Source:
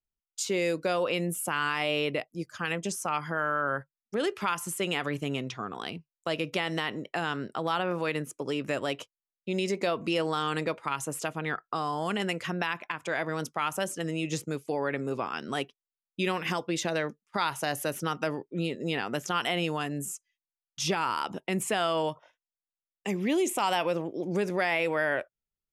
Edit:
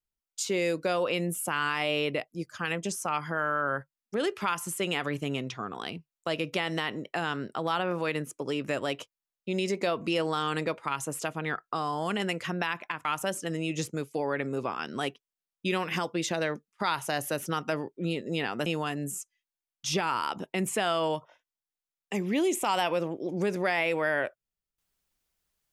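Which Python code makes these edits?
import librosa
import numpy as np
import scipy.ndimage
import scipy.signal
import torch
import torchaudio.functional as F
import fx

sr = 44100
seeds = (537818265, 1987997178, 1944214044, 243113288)

y = fx.edit(x, sr, fx.cut(start_s=13.05, length_s=0.54),
    fx.cut(start_s=19.2, length_s=0.4), tone=tone)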